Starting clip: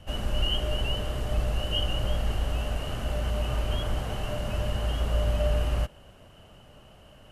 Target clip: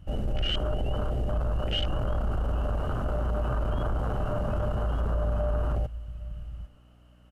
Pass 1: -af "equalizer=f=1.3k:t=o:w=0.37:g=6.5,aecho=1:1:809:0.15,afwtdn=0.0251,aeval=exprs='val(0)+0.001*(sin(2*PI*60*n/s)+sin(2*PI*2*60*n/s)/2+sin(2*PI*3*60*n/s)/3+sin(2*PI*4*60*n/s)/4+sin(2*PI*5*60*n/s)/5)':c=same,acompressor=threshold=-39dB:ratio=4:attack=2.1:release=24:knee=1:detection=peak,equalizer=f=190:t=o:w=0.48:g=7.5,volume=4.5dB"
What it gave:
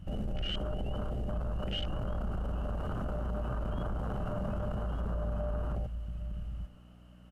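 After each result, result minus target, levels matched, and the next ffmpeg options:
compressor: peak gain reduction +7 dB; 250 Hz band +4.0 dB
-af "equalizer=f=1.3k:t=o:w=0.37:g=6.5,aecho=1:1:809:0.15,afwtdn=0.0251,aeval=exprs='val(0)+0.001*(sin(2*PI*60*n/s)+sin(2*PI*2*60*n/s)/2+sin(2*PI*3*60*n/s)/3+sin(2*PI*4*60*n/s)/4+sin(2*PI*5*60*n/s)/5)':c=same,acompressor=threshold=-29.5dB:ratio=4:attack=2.1:release=24:knee=1:detection=peak,equalizer=f=190:t=o:w=0.48:g=7.5,volume=4.5dB"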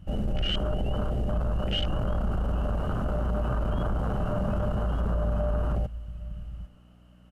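250 Hz band +3.5 dB
-af "equalizer=f=1.3k:t=o:w=0.37:g=6.5,aecho=1:1:809:0.15,afwtdn=0.0251,aeval=exprs='val(0)+0.001*(sin(2*PI*60*n/s)+sin(2*PI*2*60*n/s)/2+sin(2*PI*3*60*n/s)/3+sin(2*PI*4*60*n/s)/4+sin(2*PI*5*60*n/s)/5)':c=same,acompressor=threshold=-29.5dB:ratio=4:attack=2.1:release=24:knee=1:detection=peak,volume=4.5dB"

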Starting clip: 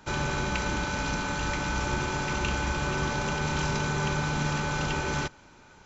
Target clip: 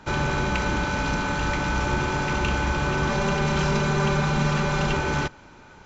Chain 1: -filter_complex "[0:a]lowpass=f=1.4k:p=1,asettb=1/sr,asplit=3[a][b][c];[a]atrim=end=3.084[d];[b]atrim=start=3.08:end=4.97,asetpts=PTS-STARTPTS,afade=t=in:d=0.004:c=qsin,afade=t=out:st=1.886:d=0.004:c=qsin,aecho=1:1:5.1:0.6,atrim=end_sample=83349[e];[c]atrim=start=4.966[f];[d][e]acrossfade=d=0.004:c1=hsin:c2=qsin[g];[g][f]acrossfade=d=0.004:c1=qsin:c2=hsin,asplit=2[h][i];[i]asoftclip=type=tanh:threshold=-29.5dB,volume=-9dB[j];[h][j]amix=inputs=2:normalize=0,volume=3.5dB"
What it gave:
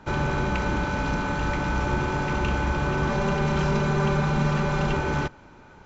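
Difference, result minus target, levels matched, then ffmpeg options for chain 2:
4000 Hz band -4.5 dB
-filter_complex "[0:a]lowpass=f=3.5k:p=1,asettb=1/sr,asplit=3[a][b][c];[a]atrim=end=3.084[d];[b]atrim=start=3.08:end=4.97,asetpts=PTS-STARTPTS,afade=t=in:d=0.004:c=qsin,afade=t=out:st=1.886:d=0.004:c=qsin,aecho=1:1:5.1:0.6,atrim=end_sample=83349[e];[c]atrim=start=4.966[f];[d][e]acrossfade=d=0.004:c1=hsin:c2=qsin[g];[g][f]acrossfade=d=0.004:c1=qsin:c2=hsin,asplit=2[h][i];[i]asoftclip=type=tanh:threshold=-29.5dB,volume=-9dB[j];[h][j]amix=inputs=2:normalize=0,volume=3.5dB"

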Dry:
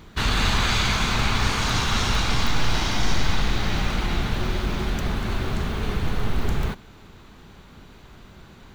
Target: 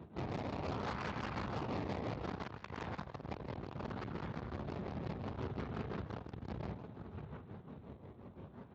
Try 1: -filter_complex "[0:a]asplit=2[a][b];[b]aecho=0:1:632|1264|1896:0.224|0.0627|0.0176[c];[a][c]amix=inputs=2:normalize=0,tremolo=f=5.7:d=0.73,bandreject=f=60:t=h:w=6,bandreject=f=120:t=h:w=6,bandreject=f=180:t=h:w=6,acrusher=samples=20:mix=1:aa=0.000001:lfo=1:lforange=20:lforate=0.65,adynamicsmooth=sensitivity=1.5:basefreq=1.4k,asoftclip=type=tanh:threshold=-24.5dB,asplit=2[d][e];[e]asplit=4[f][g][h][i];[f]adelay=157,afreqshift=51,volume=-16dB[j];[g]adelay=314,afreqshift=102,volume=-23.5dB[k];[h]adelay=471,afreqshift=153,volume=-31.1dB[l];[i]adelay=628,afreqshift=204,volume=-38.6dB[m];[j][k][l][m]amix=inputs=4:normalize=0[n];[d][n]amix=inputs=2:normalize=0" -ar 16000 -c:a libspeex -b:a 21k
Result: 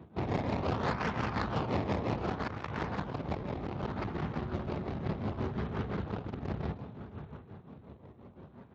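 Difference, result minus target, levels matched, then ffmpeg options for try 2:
soft clip: distortion -6 dB
-filter_complex "[0:a]asplit=2[a][b];[b]aecho=0:1:632|1264|1896:0.224|0.0627|0.0176[c];[a][c]amix=inputs=2:normalize=0,tremolo=f=5.7:d=0.73,bandreject=f=60:t=h:w=6,bandreject=f=120:t=h:w=6,bandreject=f=180:t=h:w=6,acrusher=samples=20:mix=1:aa=0.000001:lfo=1:lforange=20:lforate=0.65,adynamicsmooth=sensitivity=1.5:basefreq=1.4k,asoftclip=type=tanh:threshold=-36dB,asplit=2[d][e];[e]asplit=4[f][g][h][i];[f]adelay=157,afreqshift=51,volume=-16dB[j];[g]adelay=314,afreqshift=102,volume=-23.5dB[k];[h]adelay=471,afreqshift=153,volume=-31.1dB[l];[i]adelay=628,afreqshift=204,volume=-38.6dB[m];[j][k][l][m]amix=inputs=4:normalize=0[n];[d][n]amix=inputs=2:normalize=0" -ar 16000 -c:a libspeex -b:a 21k

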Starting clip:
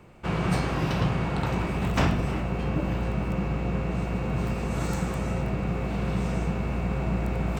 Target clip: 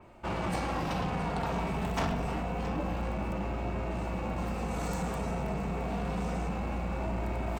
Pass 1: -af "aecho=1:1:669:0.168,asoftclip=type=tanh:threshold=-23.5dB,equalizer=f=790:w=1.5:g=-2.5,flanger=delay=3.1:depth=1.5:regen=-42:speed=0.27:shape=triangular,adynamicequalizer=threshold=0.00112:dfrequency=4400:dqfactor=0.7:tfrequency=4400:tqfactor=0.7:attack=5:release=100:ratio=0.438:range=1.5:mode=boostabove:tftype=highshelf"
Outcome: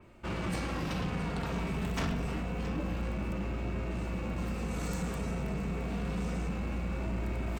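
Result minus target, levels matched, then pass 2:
1000 Hz band -5.5 dB
-af "aecho=1:1:669:0.168,asoftclip=type=tanh:threshold=-23.5dB,equalizer=f=790:w=1.5:g=7,flanger=delay=3.1:depth=1.5:regen=-42:speed=0.27:shape=triangular,adynamicequalizer=threshold=0.00112:dfrequency=4400:dqfactor=0.7:tfrequency=4400:tqfactor=0.7:attack=5:release=100:ratio=0.438:range=1.5:mode=boostabove:tftype=highshelf"

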